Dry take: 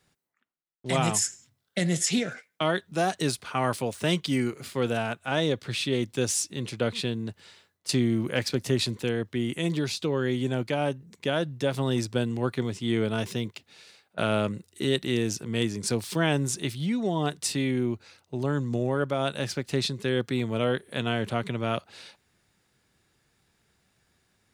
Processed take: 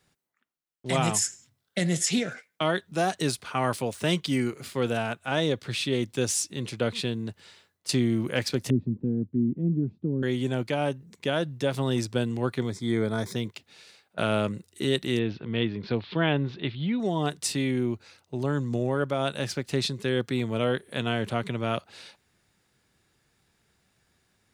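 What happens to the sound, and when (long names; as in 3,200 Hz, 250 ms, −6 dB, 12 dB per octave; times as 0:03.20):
0:08.70–0:10.23: low-pass with resonance 240 Hz, resonance Q 1.9
0:12.70–0:13.36: Butterworth band-reject 2,800 Hz, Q 2.5
0:15.19–0:17.00: Butterworth low-pass 4,000 Hz 48 dB per octave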